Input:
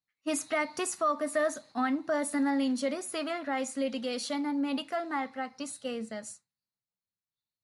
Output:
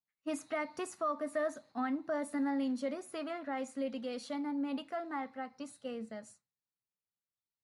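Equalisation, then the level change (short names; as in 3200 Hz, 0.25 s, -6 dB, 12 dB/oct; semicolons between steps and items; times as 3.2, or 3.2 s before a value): high shelf 2600 Hz -9.5 dB; -5.0 dB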